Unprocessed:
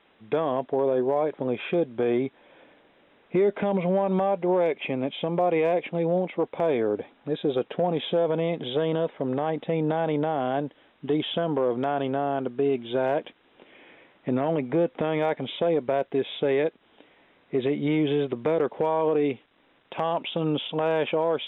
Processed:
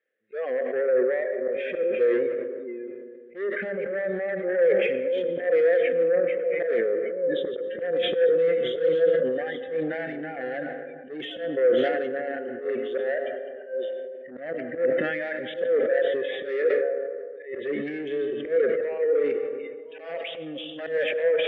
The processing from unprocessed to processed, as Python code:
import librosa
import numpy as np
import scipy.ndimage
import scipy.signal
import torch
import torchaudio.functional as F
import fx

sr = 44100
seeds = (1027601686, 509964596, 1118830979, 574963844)

y = fx.reverse_delay(x, sr, ms=608, wet_db=-8.0)
y = fx.noise_reduce_blind(y, sr, reduce_db=23)
y = fx.rider(y, sr, range_db=3, speed_s=2.0)
y = fx.cheby_harmonics(y, sr, harmonics=(3, 5), levels_db=(-17, -12), full_scale_db=-13.0)
y = fx.double_bandpass(y, sr, hz=940.0, octaves=1.8)
y = fx.auto_swell(y, sr, attack_ms=110.0)
y = fx.rev_freeverb(y, sr, rt60_s=2.2, hf_ratio=0.3, predelay_ms=60, drr_db=9.5)
y = fx.sustainer(y, sr, db_per_s=30.0)
y = y * 10.0 ** (5.0 / 20.0)